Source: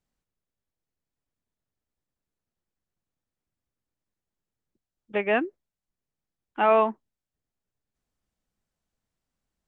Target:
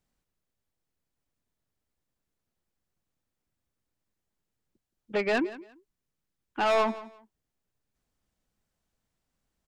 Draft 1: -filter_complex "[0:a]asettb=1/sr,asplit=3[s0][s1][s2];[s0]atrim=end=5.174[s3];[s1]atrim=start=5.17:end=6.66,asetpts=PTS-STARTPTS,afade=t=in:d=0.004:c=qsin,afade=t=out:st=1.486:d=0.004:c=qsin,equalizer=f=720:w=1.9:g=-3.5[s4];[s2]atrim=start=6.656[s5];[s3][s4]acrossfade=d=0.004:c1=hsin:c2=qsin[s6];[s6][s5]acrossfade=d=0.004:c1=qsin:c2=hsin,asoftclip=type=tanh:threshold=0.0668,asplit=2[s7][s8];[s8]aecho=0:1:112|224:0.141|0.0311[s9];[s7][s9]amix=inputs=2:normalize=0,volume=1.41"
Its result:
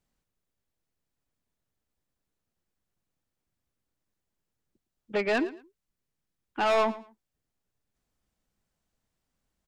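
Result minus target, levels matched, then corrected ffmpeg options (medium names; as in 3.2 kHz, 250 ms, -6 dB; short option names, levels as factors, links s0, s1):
echo 60 ms early
-filter_complex "[0:a]asettb=1/sr,asplit=3[s0][s1][s2];[s0]atrim=end=5.174[s3];[s1]atrim=start=5.17:end=6.66,asetpts=PTS-STARTPTS,afade=t=in:d=0.004:c=qsin,afade=t=out:st=1.486:d=0.004:c=qsin,equalizer=f=720:w=1.9:g=-3.5[s4];[s2]atrim=start=6.656[s5];[s3][s4]acrossfade=d=0.004:c1=hsin:c2=qsin[s6];[s6][s5]acrossfade=d=0.004:c1=qsin:c2=hsin,asoftclip=type=tanh:threshold=0.0668,asplit=2[s7][s8];[s8]aecho=0:1:172|344:0.141|0.0311[s9];[s7][s9]amix=inputs=2:normalize=0,volume=1.41"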